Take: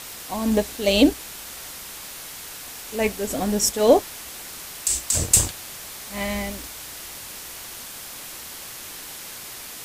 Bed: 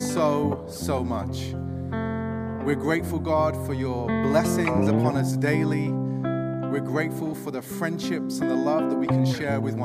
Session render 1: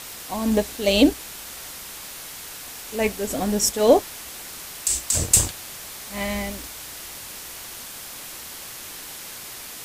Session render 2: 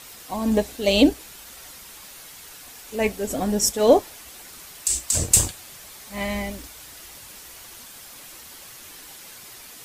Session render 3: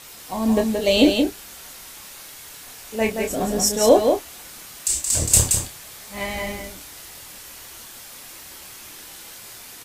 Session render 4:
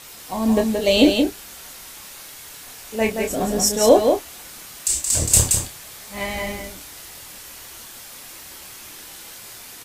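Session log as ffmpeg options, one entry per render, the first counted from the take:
-af anull
-af "afftdn=nr=7:nf=-38"
-filter_complex "[0:a]asplit=2[a][b];[b]adelay=27,volume=-5.5dB[c];[a][c]amix=inputs=2:normalize=0,aecho=1:1:174:0.562"
-af "volume=1dB,alimiter=limit=-1dB:level=0:latency=1"

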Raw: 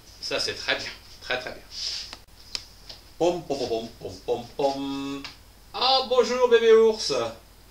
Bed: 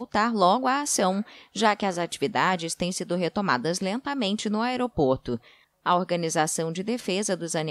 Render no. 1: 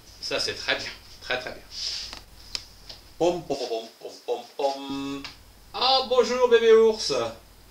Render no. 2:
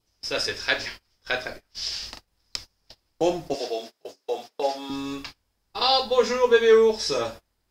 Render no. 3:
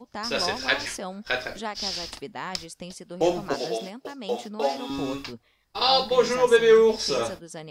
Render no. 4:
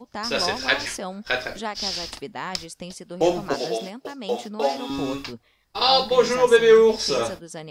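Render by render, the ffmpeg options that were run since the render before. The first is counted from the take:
-filter_complex "[0:a]asettb=1/sr,asplit=3[a][b][c];[a]atrim=end=1.984[d];[b]atrim=start=1.98:end=2.57,asetpts=PTS-STARTPTS,afade=t=in:d=0.004:c=qsin,afade=t=out:st=0.586:d=0.004:c=qsin,asplit=2[e][f];[f]adelay=42,volume=-4dB[g];[e][g]amix=inputs=2:normalize=0,atrim=end_sample=26019[h];[c]atrim=start=2.566[i];[d][h]acrossfade=d=0.004:c1=hsin:c2=qsin[j];[j][i]acrossfade=d=0.004:c1=qsin:c2=hsin,asettb=1/sr,asplit=3[k][l][m];[k]atrim=end=3.554[n];[l]atrim=start=3.55:end=4.9,asetpts=PTS-STARTPTS,afade=t=in:d=0.004:c=qsin,afade=t=out:st=1.346:d=0.004:c=qsin,highpass=420[o];[m]atrim=start=4.896[p];[n][o]acrossfade=d=0.004:c1=hsin:c2=qsin[q];[q][p]acrossfade=d=0.004:c1=qsin:c2=hsin"
-af "adynamicequalizer=threshold=0.00794:dfrequency=1700:dqfactor=3.5:tfrequency=1700:tqfactor=3.5:attack=5:release=100:ratio=0.375:range=2:mode=boostabove:tftype=bell,agate=range=-23dB:threshold=-38dB:ratio=16:detection=peak"
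-filter_complex "[1:a]volume=-11.5dB[a];[0:a][a]amix=inputs=2:normalize=0"
-af "volume=2.5dB"

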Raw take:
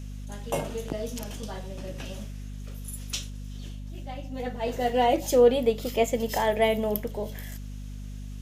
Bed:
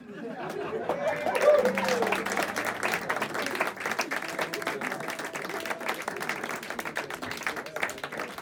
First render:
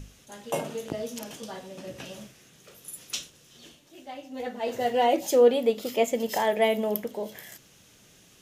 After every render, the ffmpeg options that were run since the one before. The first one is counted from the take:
-af "bandreject=f=50:t=h:w=6,bandreject=f=100:t=h:w=6,bandreject=f=150:t=h:w=6,bandreject=f=200:t=h:w=6,bandreject=f=250:t=h:w=6"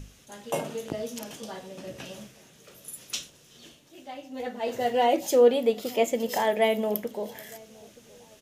-filter_complex "[0:a]asplit=2[a][b];[b]adelay=919,lowpass=f=1.1k:p=1,volume=-23dB,asplit=2[c][d];[d]adelay=919,lowpass=f=1.1k:p=1,volume=0.49,asplit=2[e][f];[f]adelay=919,lowpass=f=1.1k:p=1,volume=0.49[g];[a][c][e][g]amix=inputs=4:normalize=0"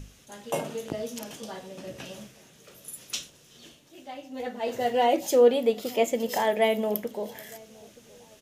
-af anull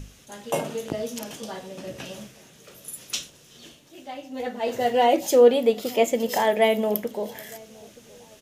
-af "volume=3.5dB"

